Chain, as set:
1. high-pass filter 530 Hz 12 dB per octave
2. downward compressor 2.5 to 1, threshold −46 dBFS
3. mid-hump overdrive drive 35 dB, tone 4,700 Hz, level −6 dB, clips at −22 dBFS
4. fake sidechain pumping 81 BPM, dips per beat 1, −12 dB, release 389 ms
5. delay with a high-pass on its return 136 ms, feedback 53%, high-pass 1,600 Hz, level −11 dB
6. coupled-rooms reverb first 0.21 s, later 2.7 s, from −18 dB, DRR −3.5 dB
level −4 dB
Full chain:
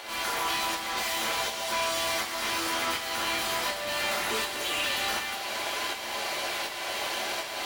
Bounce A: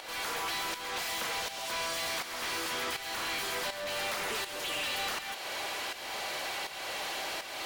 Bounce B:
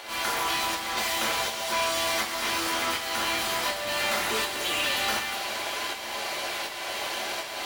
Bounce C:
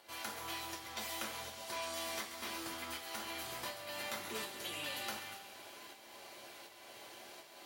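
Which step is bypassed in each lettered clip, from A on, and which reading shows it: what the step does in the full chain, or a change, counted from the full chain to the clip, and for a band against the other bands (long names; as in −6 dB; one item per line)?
6, 250 Hz band −1.5 dB
2, average gain reduction 7.5 dB
3, 125 Hz band +5.0 dB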